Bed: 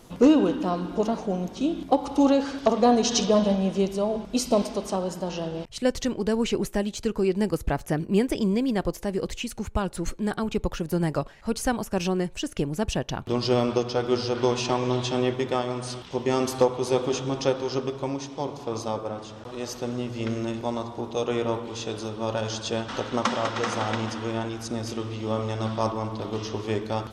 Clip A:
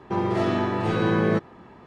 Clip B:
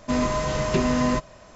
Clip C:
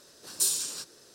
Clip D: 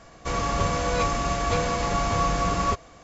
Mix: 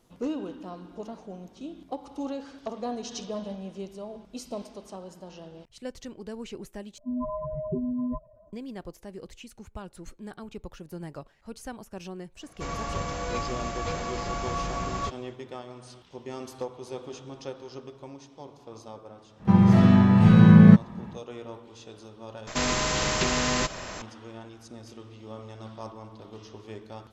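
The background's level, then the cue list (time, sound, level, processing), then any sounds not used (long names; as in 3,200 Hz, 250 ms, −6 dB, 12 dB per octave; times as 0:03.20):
bed −14 dB
0:06.98: overwrite with B −7.5 dB + expanding power law on the bin magnitudes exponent 3.4
0:12.35: mix in D −7.5 dB, fades 0.10 s
0:19.37: mix in A −0.5 dB, fades 0.10 s + low shelf with overshoot 260 Hz +9 dB, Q 3
0:22.47: overwrite with B −3 dB + every bin compressed towards the loudest bin 2 to 1
not used: C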